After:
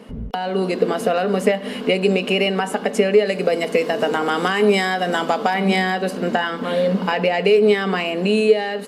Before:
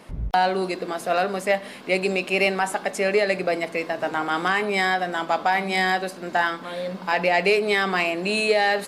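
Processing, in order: 3.25–5.54 tone controls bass -2 dB, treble +7 dB; compressor 10:1, threshold -25 dBFS, peak gain reduction 10.5 dB; bell 1500 Hz +2.5 dB 1.4 oct; small resonant body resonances 230/440/2900 Hz, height 16 dB, ringing for 50 ms; AGC gain up to 10 dB; gain -2.5 dB

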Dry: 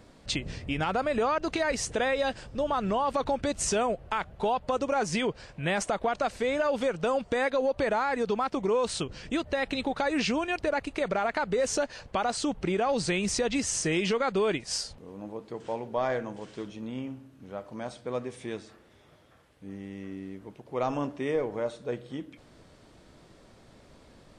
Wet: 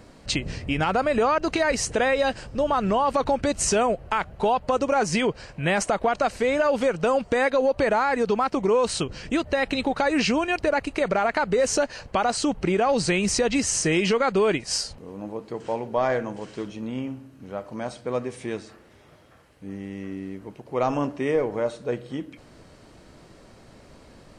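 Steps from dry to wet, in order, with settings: notch 3500 Hz, Q 11; gain +5.5 dB

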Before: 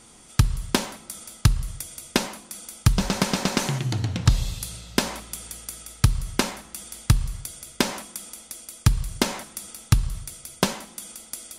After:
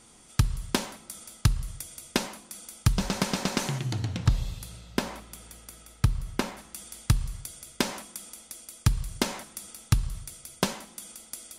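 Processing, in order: 4.27–6.58 bell 8300 Hz -7 dB 2.7 oct; gain -4.5 dB

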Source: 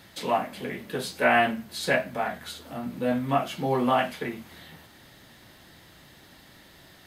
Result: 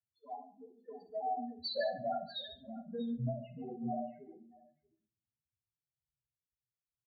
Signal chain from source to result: Doppler pass-by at 2, 22 m/s, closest 6.3 m; LPF 4000 Hz 6 dB/oct; in parallel at +2 dB: level quantiser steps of 16 dB; on the sum: loudest bins only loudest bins 1; compressor 4:1, threshold -43 dBFS, peak gain reduction 12.5 dB; on a send: tapped delay 65/143/636 ms -12.5/-13/-11 dB; on the sum: shoebox room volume 150 m³, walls mixed, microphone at 0.35 m; three-band expander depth 100%; gain +4 dB

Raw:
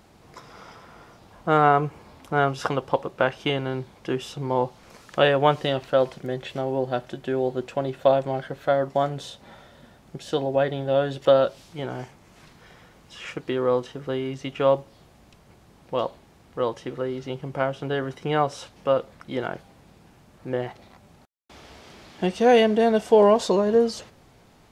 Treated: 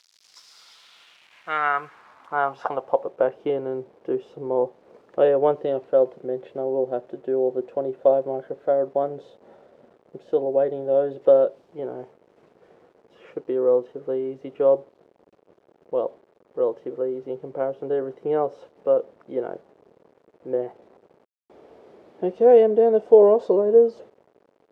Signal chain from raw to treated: requantised 8-bit, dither none; band-pass sweep 5000 Hz -> 450 Hz, 0.48–3.31; gain +5 dB

